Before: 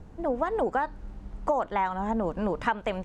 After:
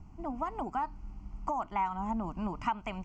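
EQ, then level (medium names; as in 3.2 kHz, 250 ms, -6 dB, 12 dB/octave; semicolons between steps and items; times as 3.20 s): peaking EQ 280 Hz +2 dB 0.41 oct; static phaser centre 2.5 kHz, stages 8; -3.0 dB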